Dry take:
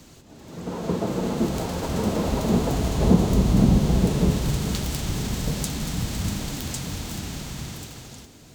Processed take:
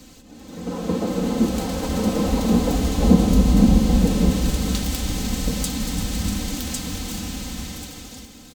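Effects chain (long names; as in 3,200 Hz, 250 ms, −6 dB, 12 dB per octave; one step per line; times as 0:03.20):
parametric band 1,000 Hz −3 dB 1.9 octaves
comb filter 3.9 ms, depth 74%
echo with a time of its own for lows and highs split 460 Hz, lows 162 ms, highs 342 ms, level −12.5 dB
level +1.5 dB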